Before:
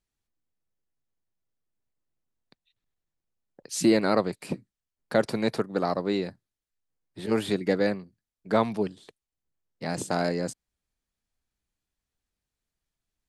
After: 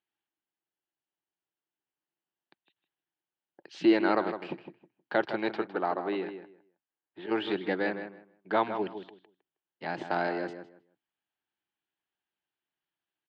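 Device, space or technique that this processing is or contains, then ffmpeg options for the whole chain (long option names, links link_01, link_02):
kitchen radio: -filter_complex "[0:a]asettb=1/sr,asplit=3[link_01][link_02][link_03];[link_01]atrim=end=5.574[link_04];[link_02]atrim=start=5.57:end=7.31,asetpts=PTS-STARTPTS,afade=type=in:duration=0.004:curve=qsin,afade=type=out:start_time=1.736:duration=0.004:curve=qsin,bass=frequency=250:gain=-4,treble=frequency=4000:gain=-12[link_05];[link_03]atrim=start=7.306[link_06];[link_04][link_05]acrossfade=duration=0.004:curve1=hsin:curve2=qsin[link_07];[link_07][link_06]acrossfade=duration=0.004:curve1=qsin:curve2=hsin,highpass=220,equalizer=frequency=230:width_type=q:width=4:gain=-7,equalizer=frequency=340:width_type=q:width=4:gain=6,equalizer=frequency=490:width_type=q:width=4:gain=-5,equalizer=frequency=850:width_type=q:width=4:gain=7,equalizer=frequency=1600:width_type=q:width=4:gain=6,equalizer=frequency=3000:width_type=q:width=4:gain=8,lowpass=frequency=3700:width=0.5412,lowpass=frequency=3700:width=1.3066,asplit=2[link_08][link_09];[link_09]adelay=158,lowpass=frequency=2600:poles=1,volume=-9dB,asplit=2[link_10][link_11];[link_11]adelay=158,lowpass=frequency=2600:poles=1,volume=0.21,asplit=2[link_12][link_13];[link_13]adelay=158,lowpass=frequency=2600:poles=1,volume=0.21[link_14];[link_08][link_10][link_12][link_14]amix=inputs=4:normalize=0,volume=-4dB"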